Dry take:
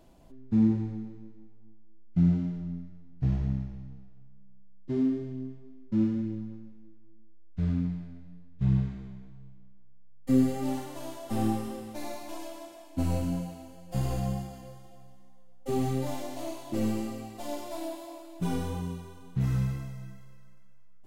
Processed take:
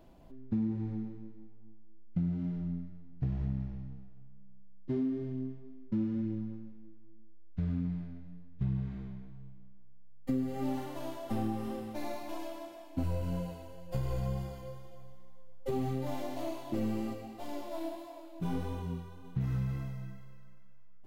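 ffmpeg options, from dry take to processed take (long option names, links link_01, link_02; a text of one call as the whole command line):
ffmpeg -i in.wav -filter_complex "[0:a]asettb=1/sr,asplit=3[link_01][link_02][link_03];[link_01]atrim=end=13.034[link_04];[link_02]atrim=start=13.03:end=15.71,asetpts=PTS-STARTPTS,afade=type=in:duration=0.004:curve=qsin,afade=type=out:start_time=2.676:duration=0.004:curve=qsin,aecho=1:1:2:0.65,atrim=end_sample=118188[link_05];[link_03]atrim=start=15.706[link_06];[link_04][link_05]acrossfade=duration=0.004:curve1=hsin:curve2=qsin[link_07];[link_07][link_06]acrossfade=duration=0.004:curve1=qsin:curve2=hsin,asplit=3[link_08][link_09][link_10];[link_08]afade=type=out:start_time=17.13:duration=0.02[link_11];[link_09]flanger=delay=19.5:depth=5.2:speed=1.6,afade=type=in:start_time=17.13:duration=0.02,afade=type=out:start_time=19.23:duration=0.02[link_12];[link_10]afade=type=in:start_time=19.23:duration=0.02[link_13];[link_11][link_12][link_13]amix=inputs=3:normalize=0,equalizer=frequency=8300:width_type=o:width=1.5:gain=-9,acompressor=threshold=-29dB:ratio=6" out.wav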